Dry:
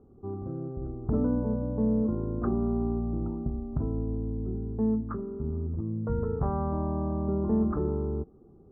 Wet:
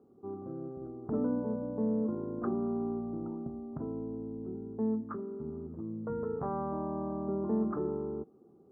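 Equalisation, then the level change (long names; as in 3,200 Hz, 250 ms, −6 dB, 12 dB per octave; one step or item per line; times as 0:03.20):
high-pass filter 210 Hz 12 dB per octave
−2.5 dB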